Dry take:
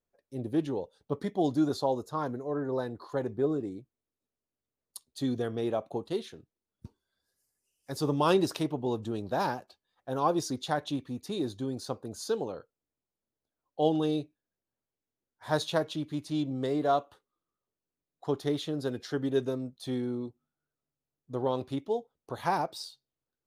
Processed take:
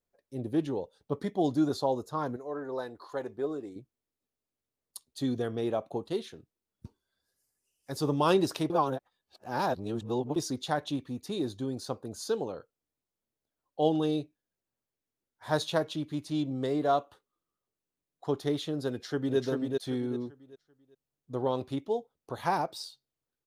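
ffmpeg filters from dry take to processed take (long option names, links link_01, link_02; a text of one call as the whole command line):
ffmpeg -i in.wav -filter_complex "[0:a]asettb=1/sr,asplit=3[link_01][link_02][link_03];[link_01]atrim=end=2.364[link_04];[link_02]atrim=start=2.36:end=3.76,asetpts=PTS-STARTPTS,afade=type=in:duration=0.004:curve=qsin,afade=type=out:start_time=1.396:duration=0.004:curve=qsin,equalizer=frequency=130:width_type=o:width=2.4:gain=-12.5[link_05];[link_03]atrim=start=3.756[link_06];[link_04][link_05]acrossfade=duration=0.004:curve1=hsin:curve2=qsin[link_07];[link_07][link_06]acrossfade=duration=0.004:curve1=qsin:curve2=hsin,asplit=2[link_08][link_09];[link_09]afade=type=in:start_time=18.89:duration=0.01,afade=type=out:start_time=19.38:duration=0.01,aecho=0:1:390|780|1170|1560:0.668344|0.200503|0.060151|0.0180453[link_10];[link_08][link_10]amix=inputs=2:normalize=0,asplit=3[link_11][link_12][link_13];[link_11]atrim=end=8.702[link_14];[link_12]atrim=start=8.698:end=10.362,asetpts=PTS-STARTPTS,areverse[link_15];[link_13]atrim=start=10.358[link_16];[link_14][link_15]acrossfade=duration=0.004:curve1=hsin:curve2=hsin[link_17];[link_17][link_16]acrossfade=duration=0.004:curve1=hsin:curve2=hsin" out.wav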